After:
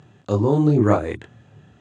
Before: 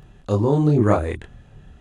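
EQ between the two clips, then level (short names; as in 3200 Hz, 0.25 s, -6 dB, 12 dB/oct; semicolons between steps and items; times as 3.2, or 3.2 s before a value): elliptic band-pass 100–7700 Hz, stop band 40 dB; bell 310 Hz +3 dB 0.31 oct; 0.0 dB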